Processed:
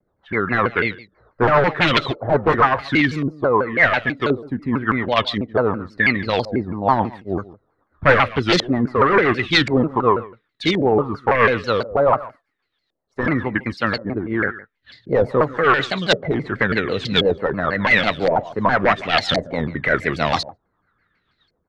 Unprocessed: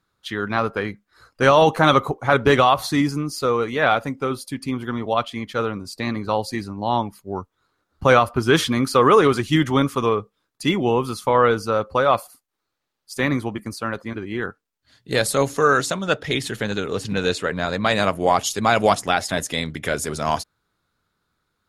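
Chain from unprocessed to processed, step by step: small resonant body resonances 1.9/3.9 kHz, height 17 dB; wavefolder -11 dBFS; on a send: delay 143 ms -19 dB; on the sum: rotary cabinet horn 7.5 Hz; LFO low-pass saw up 0.93 Hz 550–4500 Hz; in parallel at +0.5 dB: gain riding within 5 dB 0.5 s; on the sum: vibrato with a chosen wave saw down 6.1 Hz, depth 250 cents; trim -3 dB

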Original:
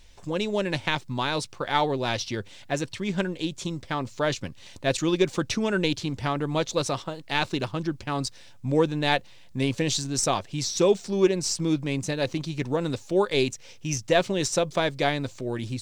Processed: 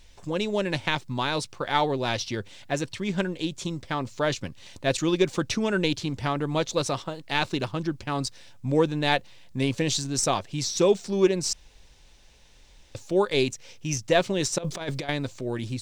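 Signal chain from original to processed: 11.53–12.95 s: room tone; 14.58–15.09 s: compressor with a negative ratio -29 dBFS, ratio -0.5

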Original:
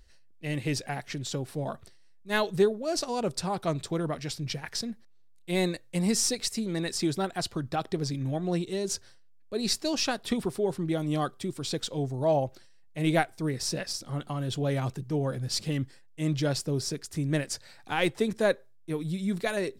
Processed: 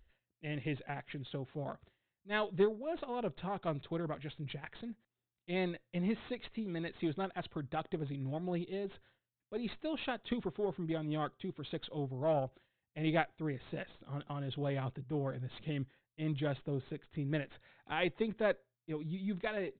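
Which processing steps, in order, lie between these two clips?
Chebyshev shaper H 3 -20 dB, 8 -33 dB, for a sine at -10 dBFS; resampled via 8 kHz; trim -5 dB

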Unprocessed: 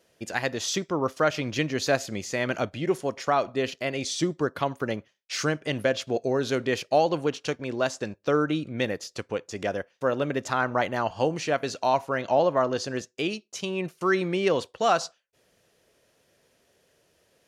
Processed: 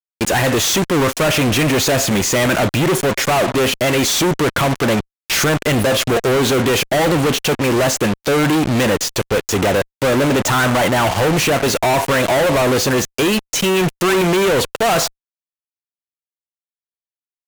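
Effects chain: fuzz box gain 50 dB, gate -44 dBFS; dynamic bell 4.9 kHz, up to -5 dB, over -30 dBFS, Q 1.9

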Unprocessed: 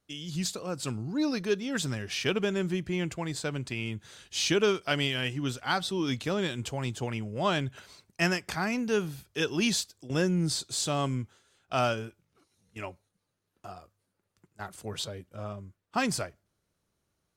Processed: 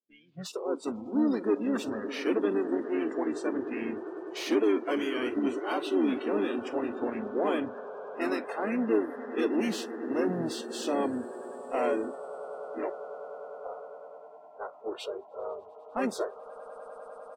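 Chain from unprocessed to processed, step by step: hard clipper -28.5 dBFS, distortion -8 dB; harmony voices -5 st -3 dB; high-pass 280 Hz 24 dB/octave; treble shelf 11 kHz +10.5 dB; level-controlled noise filter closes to 760 Hz, open at -30.5 dBFS; tilt EQ -4.5 dB/octave; echo with a slow build-up 100 ms, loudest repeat 8, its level -17.5 dB; spectral noise reduction 23 dB

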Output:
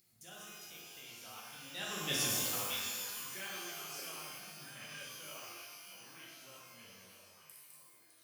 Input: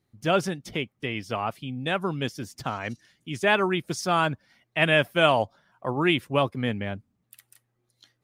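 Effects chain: Doppler pass-by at 2.22 s, 22 m/s, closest 1.7 m; upward compressor, threshold -51 dBFS; pre-emphasis filter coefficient 0.9; repeats whose band climbs or falls 626 ms, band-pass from 3.2 kHz, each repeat -1.4 oct, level -4 dB; pitch-shifted reverb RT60 1.4 s, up +12 st, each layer -2 dB, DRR -5 dB; trim +7.5 dB

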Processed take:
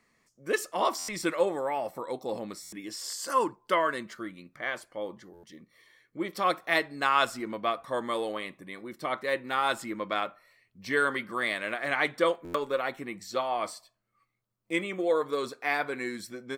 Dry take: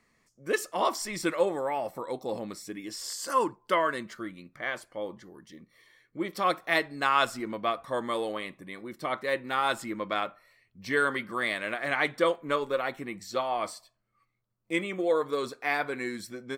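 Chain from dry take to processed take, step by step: bass shelf 100 Hz -6.5 dB; buffer glitch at 0.98/2.62/5.33/12.44 s, samples 512, times 8

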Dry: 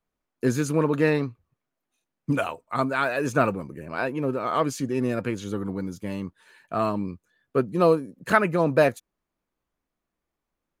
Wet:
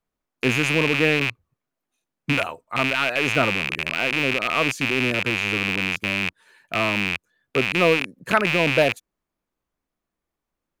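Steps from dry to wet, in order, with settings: rattle on loud lows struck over -38 dBFS, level -10 dBFS

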